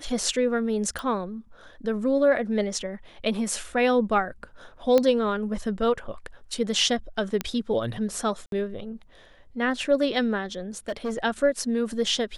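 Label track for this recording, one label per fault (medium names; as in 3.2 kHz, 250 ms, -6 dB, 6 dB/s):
0.990000	0.990000	pop
4.980000	4.980000	pop -9 dBFS
7.410000	7.410000	pop -11 dBFS
8.460000	8.520000	dropout 62 ms
10.770000	11.190000	clipped -24.5 dBFS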